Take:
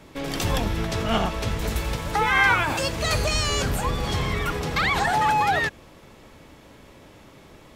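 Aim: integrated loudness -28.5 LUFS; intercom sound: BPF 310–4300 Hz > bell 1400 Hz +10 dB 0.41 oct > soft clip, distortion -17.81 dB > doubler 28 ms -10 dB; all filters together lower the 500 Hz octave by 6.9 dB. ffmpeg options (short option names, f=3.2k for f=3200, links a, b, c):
-filter_complex "[0:a]highpass=310,lowpass=4.3k,equalizer=f=500:t=o:g=-8.5,equalizer=f=1.4k:t=o:w=0.41:g=10,asoftclip=threshold=-10.5dB,asplit=2[a][b];[b]adelay=28,volume=-10dB[c];[a][c]amix=inputs=2:normalize=0,volume=-5.5dB"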